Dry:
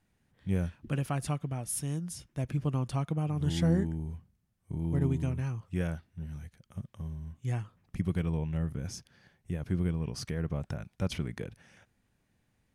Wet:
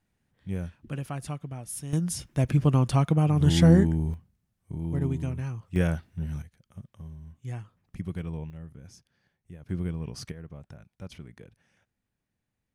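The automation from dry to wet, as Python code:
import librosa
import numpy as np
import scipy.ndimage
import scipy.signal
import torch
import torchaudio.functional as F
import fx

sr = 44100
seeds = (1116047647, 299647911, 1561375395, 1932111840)

y = fx.gain(x, sr, db=fx.steps((0.0, -2.5), (1.93, 9.0), (4.14, 0.5), (5.76, 7.5), (6.42, -3.5), (8.5, -10.5), (9.69, -1.0), (10.32, -10.0)))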